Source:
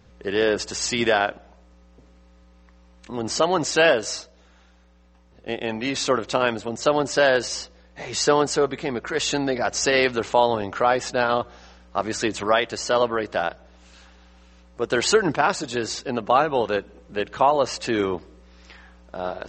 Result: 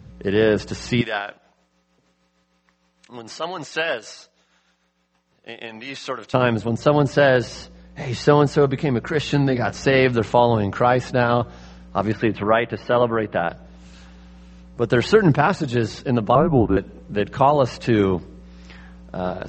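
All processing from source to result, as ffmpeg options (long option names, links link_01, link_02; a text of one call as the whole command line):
ffmpeg -i in.wav -filter_complex "[0:a]asettb=1/sr,asplit=3[link_01][link_02][link_03];[link_01]atrim=end=1.014[link_04];[link_02]atrim=start=1.01:end=6.34,asetpts=PTS-STARTPTS,afade=type=in:duration=0.004:curve=qsin,afade=type=out:start_time=5.326:duration=0.004:curve=qsin,highpass=frequency=1400:poles=1,tremolo=f=6.5:d=0.49[link_05];[link_03]atrim=start=6.336[link_06];[link_04][link_05]acrossfade=duration=0.004:curve1=hsin:curve2=qsin[link_07];[link_07][link_06]acrossfade=duration=0.004:curve1=qsin:curve2=hsin,asettb=1/sr,asplit=3[link_08][link_09][link_10];[link_08]atrim=end=9.224[link_11];[link_09]atrim=start=9.22:end=9.81,asetpts=PTS-STARTPTS,afade=type=in:duration=0.004:curve=qsin,afade=type=out:start_time=0.586:duration=0.004:curve=qsin,equalizer=frequency=580:width_type=o:width=0.91:gain=-3.5,asplit=2[link_12][link_13];[link_13]adelay=27,volume=-12dB[link_14];[link_12][link_14]amix=inputs=2:normalize=0,atrim=end_sample=26019[link_15];[link_10]atrim=start=9.806[link_16];[link_11][link_15]acrossfade=duration=0.004:curve1=hsin:curve2=qsin[link_17];[link_17][link_16]acrossfade=duration=0.004:curve1=qsin:curve2=hsin,asettb=1/sr,asplit=3[link_18][link_19][link_20];[link_18]atrim=end=12.124[link_21];[link_19]atrim=start=12.12:end=13.49,asetpts=PTS-STARTPTS,afade=type=in:duration=0.004:curve=qsin,afade=type=out:start_time=1.366:duration=0.004:curve=qsin,lowpass=frequency=3000:width=0.5412,lowpass=frequency=3000:width=1.3066,lowshelf=frequency=130:gain=-5.5[link_22];[link_20]atrim=start=13.486[link_23];[link_21][link_22]acrossfade=duration=0.004:curve1=hsin:curve2=qsin[link_24];[link_24][link_23]acrossfade=duration=0.004:curve1=qsin:curve2=hsin,asettb=1/sr,asplit=3[link_25][link_26][link_27];[link_25]atrim=end=16.354[link_28];[link_26]atrim=start=16.35:end=16.77,asetpts=PTS-STARTPTS,afade=type=in:duration=0.004:curve=qsin,afade=type=out:start_time=0.416:duration=0.004:curve=qsin,afreqshift=-130,lowpass=1200[link_29];[link_27]atrim=start=16.766[link_30];[link_28][link_29]acrossfade=duration=0.004:curve1=hsin:curve2=qsin[link_31];[link_31][link_30]acrossfade=duration=0.004:curve1=qsin:curve2=hsin,acrossover=split=3800[link_32][link_33];[link_33]acompressor=threshold=-44dB:ratio=4:attack=1:release=60[link_34];[link_32][link_34]amix=inputs=2:normalize=0,equalizer=frequency=130:width_type=o:width=1.7:gain=14.5,volume=1dB" out.wav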